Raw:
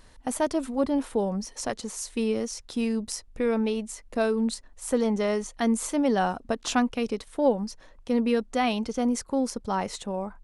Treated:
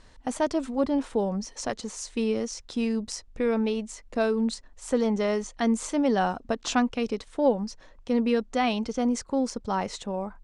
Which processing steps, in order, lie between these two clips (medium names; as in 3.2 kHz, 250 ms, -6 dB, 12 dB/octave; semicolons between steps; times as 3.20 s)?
low-pass 8 kHz 24 dB/octave